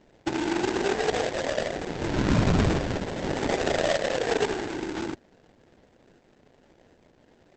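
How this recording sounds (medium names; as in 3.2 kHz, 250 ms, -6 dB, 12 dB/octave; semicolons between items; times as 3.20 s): a quantiser's noise floor 10-bit, dither triangular; phasing stages 6, 0.32 Hz, lowest notch 670–1600 Hz; aliases and images of a low sample rate 1.2 kHz, jitter 20%; Opus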